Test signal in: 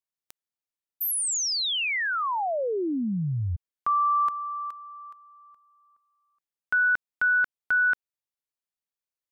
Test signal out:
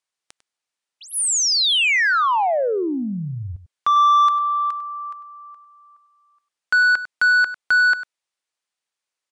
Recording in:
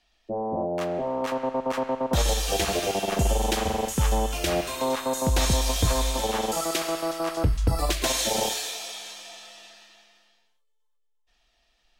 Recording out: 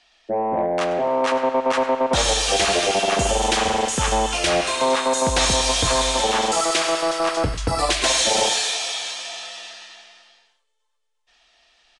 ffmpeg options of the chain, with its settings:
-filter_complex "[0:a]asplit=2[a][b];[b]highpass=f=720:p=1,volume=16dB,asoftclip=type=tanh:threshold=-10dB[c];[a][c]amix=inputs=2:normalize=0,lowpass=f=7.2k:p=1,volume=-6dB,asplit=2[d][e];[e]adelay=99.13,volume=-14dB,highshelf=f=4k:g=-2.23[f];[d][f]amix=inputs=2:normalize=0,aresample=22050,aresample=44100,volume=1dB"

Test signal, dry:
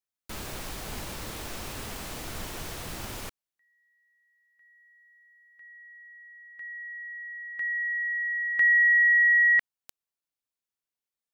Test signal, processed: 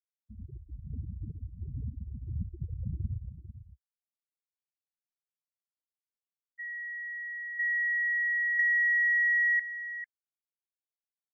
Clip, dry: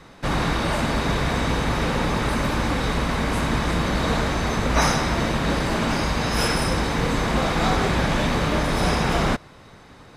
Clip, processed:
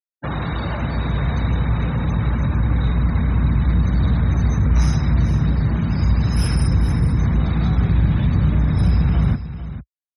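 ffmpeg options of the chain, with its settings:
-filter_complex "[0:a]afftfilt=real='re*gte(hypot(re,im),0.0562)':imag='im*gte(hypot(re,im),0.0562)':win_size=1024:overlap=0.75,highpass=f=62:w=0.5412,highpass=f=62:w=1.3066,asubboost=boost=6:cutoff=200,asoftclip=type=hard:threshold=-2.5dB,acrossover=split=150[a][b];[b]acompressor=threshold=-26dB:ratio=6:attack=11:release=312:knee=2.83:detection=peak[c];[a][c]amix=inputs=2:normalize=0,equalizer=f=11k:t=o:w=1.4:g=9,acontrast=81,aecho=1:1:447:0.237,volume=-6dB"

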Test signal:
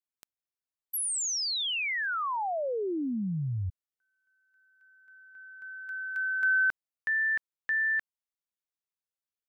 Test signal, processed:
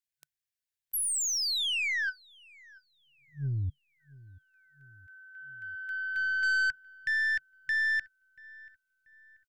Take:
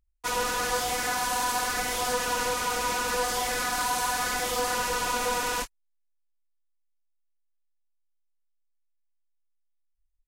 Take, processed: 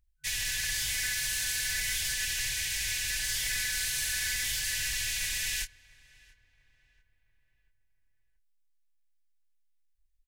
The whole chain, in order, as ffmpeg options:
-filter_complex "[0:a]afftfilt=real='re*(1-between(b*sr/4096,150,1500))':imag='im*(1-between(b*sr/4096,150,1500))':win_size=4096:overlap=0.75,aeval=exprs='(tanh(22.4*val(0)+0.15)-tanh(0.15))/22.4':c=same,asplit=2[a][b];[b]adelay=685,lowpass=f=1.8k:p=1,volume=-21dB,asplit=2[c][d];[d]adelay=685,lowpass=f=1.8k:p=1,volume=0.52,asplit=2[e][f];[f]adelay=685,lowpass=f=1.8k:p=1,volume=0.52,asplit=2[g][h];[h]adelay=685,lowpass=f=1.8k:p=1,volume=0.52[i];[a][c][e][g][i]amix=inputs=5:normalize=0,volume=2.5dB"

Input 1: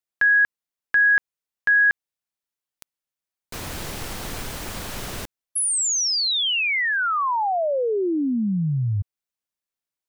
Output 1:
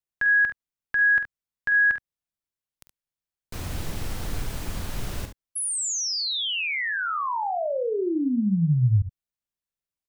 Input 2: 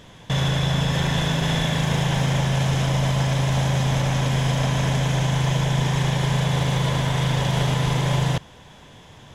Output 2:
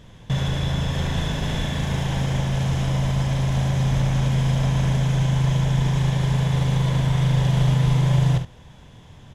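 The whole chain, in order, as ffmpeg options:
-af "lowshelf=f=180:g=12,aecho=1:1:47|71:0.316|0.282,volume=-6dB"

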